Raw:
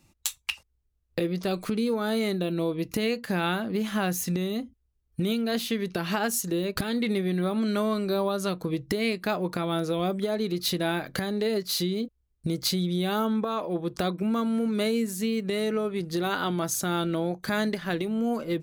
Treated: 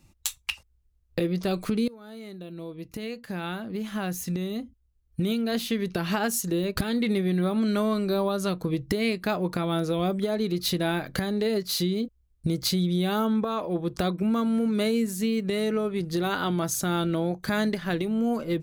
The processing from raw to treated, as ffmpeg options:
ffmpeg -i in.wav -filter_complex "[0:a]asplit=2[link_01][link_02];[link_01]atrim=end=1.88,asetpts=PTS-STARTPTS,afade=type=out:start_time=1.876:duration=0.004:curve=hsin:silence=0.0841395[link_03];[link_02]atrim=start=1.88,asetpts=PTS-STARTPTS,afade=type=in:duration=4.03:silence=0.0841395[link_04];[link_03][link_04]concat=n=2:v=0:a=1,lowshelf=frequency=120:gain=8.5" out.wav

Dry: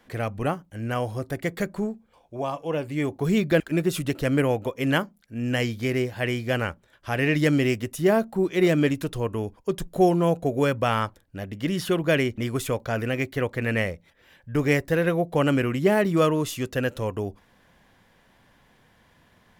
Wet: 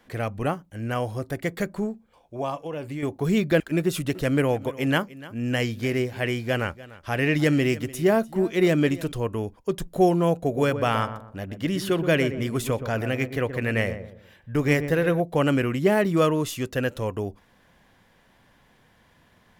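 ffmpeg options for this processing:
ffmpeg -i in.wav -filter_complex "[0:a]asettb=1/sr,asplit=3[link_01][link_02][link_03];[link_01]atrim=end=2.554[link_04];[link_02]atrim=start=2.55:end=3.03,asetpts=PTS-STARTPTS,afade=type=in:duration=0.004:curve=qsin,afade=type=out:start_time=0.476:duration=0.004:curve=qsin,acompressor=threshold=-28dB:ratio=6:attack=3.2:release=140:knee=1:detection=peak[link_05];[link_03]atrim=start=3.026[link_06];[link_04][link_05]acrossfade=duration=0.004:curve1=hsin:curve2=qsin[link_07];[link_07][link_06]acrossfade=duration=0.004:curve1=qsin:curve2=hsin,asettb=1/sr,asplit=3[link_08][link_09][link_10];[link_08]atrim=end=3.824[link_11];[link_09]atrim=start=3.82:end=9.12,asetpts=PTS-STARTPTS,afade=type=in:duration=0.004:curve=qsin,afade=type=out:start_time=5.296:duration=0.004:curve=qsin,aecho=1:1:296:0.119,atrim=end_sample=233730[link_12];[link_10]atrim=start=9.116[link_13];[link_11][link_12]acrossfade=duration=0.004:curve1=hsin:curve2=qsin[link_14];[link_14][link_13]acrossfade=duration=0.004:curve1=qsin:curve2=hsin,asettb=1/sr,asplit=3[link_15][link_16][link_17];[link_15]atrim=end=10.354[link_18];[link_16]atrim=start=10.35:end=15.2,asetpts=PTS-STARTPTS,afade=type=in:duration=0.004:curve=qsin,afade=type=out:start_time=4.846:duration=0.004:curve=qsin,asplit=2[link_19][link_20];[link_20]adelay=123,lowpass=frequency=1000:poles=1,volume=-8.5dB,asplit=2[link_21][link_22];[link_22]adelay=123,lowpass=frequency=1000:poles=1,volume=0.38,asplit=2[link_23][link_24];[link_24]adelay=123,lowpass=frequency=1000:poles=1,volume=0.38,asplit=2[link_25][link_26];[link_26]adelay=123,lowpass=frequency=1000:poles=1,volume=0.38[link_27];[link_19][link_21][link_23][link_25][link_27]amix=inputs=5:normalize=0,atrim=end_sample=213885[link_28];[link_17]atrim=start=15.196[link_29];[link_18][link_28]acrossfade=duration=0.004:curve1=hsin:curve2=qsin[link_30];[link_30][link_29]acrossfade=duration=0.004:curve1=qsin:curve2=hsin" out.wav

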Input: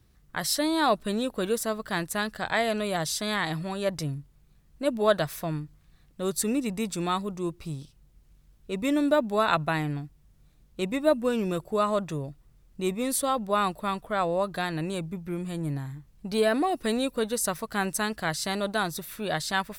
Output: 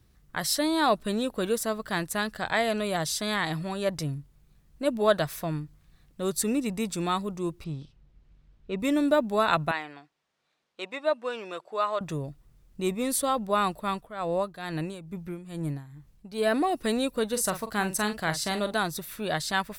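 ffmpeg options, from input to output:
ffmpeg -i in.wav -filter_complex "[0:a]asettb=1/sr,asplit=3[link_01][link_02][link_03];[link_01]atrim=end=7.644[link_04];[link_02]atrim=start=7.64:end=8.8,asetpts=PTS-STARTPTS,afade=type=in:duration=0.004:curve=qsin,afade=type=out:start_time=1.156:duration=0.004:curve=qsin,lowpass=3700[link_05];[link_03]atrim=start=8.796[link_06];[link_04][link_05]acrossfade=duration=0.004:curve1=hsin:curve2=qsin[link_07];[link_07][link_06]acrossfade=duration=0.004:curve1=qsin:curve2=hsin,asettb=1/sr,asplit=3[link_08][link_09][link_10];[link_08]atrim=end=9.714[link_11];[link_09]atrim=start=9.71:end=12.01,asetpts=PTS-STARTPTS,afade=type=in:duration=0.004:curve=qsin,afade=type=out:start_time=2.296:duration=0.004:curve=qsin,highpass=640,lowpass=4700[link_12];[link_10]atrim=start=12.006[link_13];[link_11][link_12]acrossfade=duration=0.004:curve1=hsin:curve2=qsin[link_14];[link_14][link_13]acrossfade=duration=0.004:curve1=qsin:curve2=hsin,asplit=3[link_15][link_16][link_17];[link_15]afade=type=out:start_time=13.79:duration=0.02[link_18];[link_16]tremolo=f=2.3:d=0.74,afade=type=in:start_time=13.79:duration=0.02,afade=type=out:start_time=16.51:duration=0.02[link_19];[link_17]afade=type=in:start_time=16.51:duration=0.02[link_20];[link_18][link_19][link_20]amix=inputs=3:normalize=0,asettb=1/sr,asplit=3[link_21][link_22][link_23];[link_21]atrim=end=17.284[link_24];[link_22]atrim=start=17.28:end=18.74,asetpts=PTS-STARTPTS,afade=type=in:duration=0.004:curve=qsin,afade=type=out:start_time=1.456:duration=0.004:curve=qsin,asplit=2[link_25][link_26];[link_26]adelay=43,volume=-10dB[link_27];[link_25][link_27]amix=inputs=2:normalize=0,atrim=end_sample=64386[link_28];[link_23]atrim=start=18.736[link_29];[link_24][link_28]acrossfade=duration=0.004:curve1=hsin:curve2=qsin[link_30];[link_30][link_29]acrossfade=duration=0.004:curve1=qsin:curve2=hsin" out.wav

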